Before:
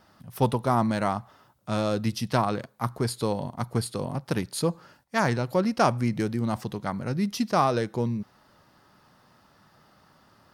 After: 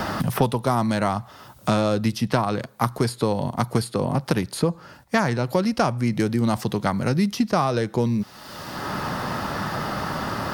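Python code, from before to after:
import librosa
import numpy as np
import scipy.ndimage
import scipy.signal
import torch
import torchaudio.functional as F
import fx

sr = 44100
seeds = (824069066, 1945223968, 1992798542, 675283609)

y = fx.band_squash(x, sr, depth_pct=100)
y = y * librosa.db_to_amplitude(4.0)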